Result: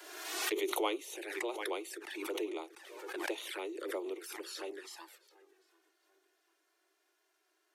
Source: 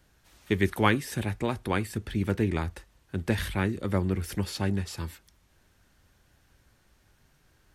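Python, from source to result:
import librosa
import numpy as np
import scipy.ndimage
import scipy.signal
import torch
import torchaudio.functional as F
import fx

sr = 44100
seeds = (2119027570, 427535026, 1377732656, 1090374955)

y = scipy.signal.sosfilt(scipy.signal.butter(16, 320.0, 'highpass', fs=sr, output='sos'), x)
y = fx.echo_tape(y, sr, ms=739, feedback_pct=34, wet_db=-23, lp_hz=4100.0, drive_db=3.0, wow_cents=8)
y = fx.env_flanger(y, sr, rest_ms=3.0, full_db=-30.0)
y = fx.pre_swell(y, sr, db_per_s=43.0)
y = y * librosa.db_to_amplitude(-6.0)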